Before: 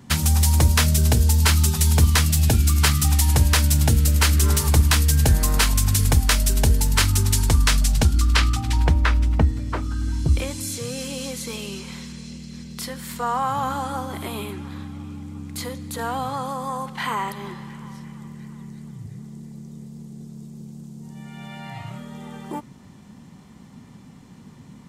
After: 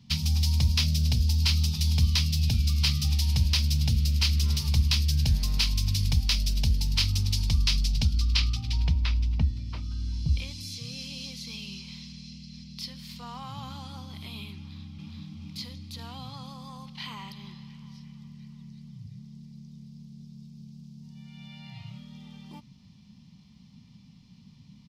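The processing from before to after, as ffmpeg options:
ffmpeg -i in.wav -filter_complex "[0:a]asplit=2[link_01][link_02];[link_02]afade=type=in:start_time=14.56:duration=0.01,afade=type=out:start_time=15.28:duration=0.01,aecho=0:1:420|840|1260|1680|2100|2520:0.944061|0.424827|0.191172|0.0860275|0.0387124|0.0174206[link_03];[link_01][link_03]amix=inputs=2:normalize=0,firequalizer=gain_entry='entry(200,0);entry(330,-17);entry(1000,-11);entry(1600,-16);entry(2400,0);entry(5000,7);entry(7500,-14);entry(15000,-9)':delay=0.05:min_phase=1,volume=-6.5dB" out.wav

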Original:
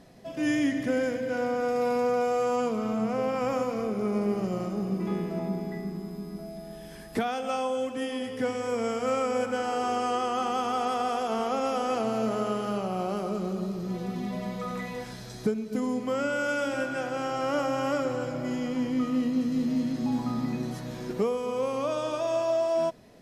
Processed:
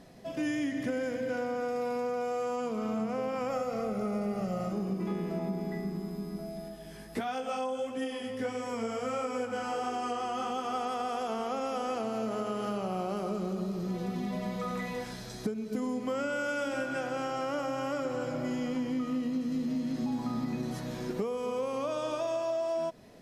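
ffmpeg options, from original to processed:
ffmpeg -i in.wav -filter_complex "[0:a]asettb=1/sr,asplit=3[link_01][link_02][link_03];[link_01]atrim=end=3.504[link_04];[link_02]atrim=start=3.5:end=4.72,asetpts=PTS-STARTPTS,afade=type=in:duration=0.004:curve=qsin,afade=type=out:start_time=1.216:duration=0.004:curve=qsin,aecho=1:1:1.5:0.65,atrim=end_sample=53802[link_05];[link_03]atrim=start=4.716[link_06];[link_04][link_05]acrossfade=duration=0.004:curve1=hsin:curve2=qsin[link_07];[link_07][link_06]acrossfade=duration=0.004:curve1=qsin:curve2=hsin,asplit=3[link_08][link_09][link_10];[link_08]afade=type=out:start_time=6.68:duration=0.02[link_11];[link_09]flanger=delay=15:depth=4.4:speed=1.5,afade=type=in:start_time=6.68:duration=0.02,afade=type=out:start_time=10.74:duration=0.02[link_12];[link_10]afade=type=in:start_time=10.74:duration=0.02[link_13];[link_11][link_12][link_13]amix=inputs=3:normalize=0,bandreject=frequency=60:width_type=h:width=6,bandreject=frequency=120:width_type=h:width=6,acompressor=threshold=-29dB:ratio=6" out.wav

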